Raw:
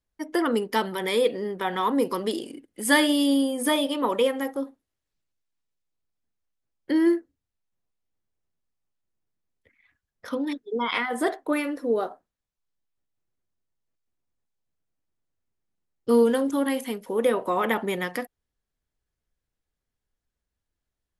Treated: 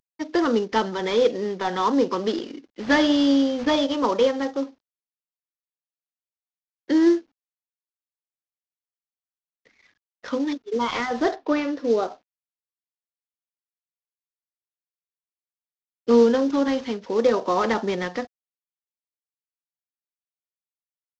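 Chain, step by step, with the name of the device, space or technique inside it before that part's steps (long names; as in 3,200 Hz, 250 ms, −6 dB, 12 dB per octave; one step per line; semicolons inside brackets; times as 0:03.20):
early wireless headset (high-pass filter 150 Hz 24 dB per octave; variable-slope delta modulation 32 kbit/s)
0:11.35–0:12.02: low-pass filter 3,800 Hz → 8,700 Hz 12 dB per octave
dynamic equaliser 2,300 Hz, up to −5 dB, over −43 dBFS, Q 1.7
level +3.5 dB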